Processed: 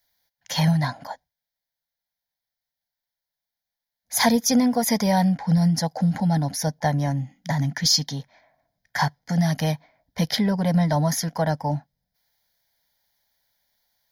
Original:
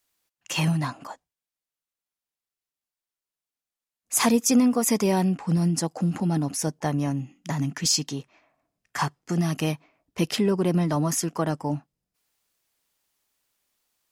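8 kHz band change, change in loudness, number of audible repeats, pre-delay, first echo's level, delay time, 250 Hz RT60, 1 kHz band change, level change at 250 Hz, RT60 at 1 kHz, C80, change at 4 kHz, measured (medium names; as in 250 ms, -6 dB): -1.0 dB, +2.0 dB, no echo, no reverb, no echo, no echo, no reverb, +4.5 dB, +1.5 dB, no reverb, no reverb, +5.0 dB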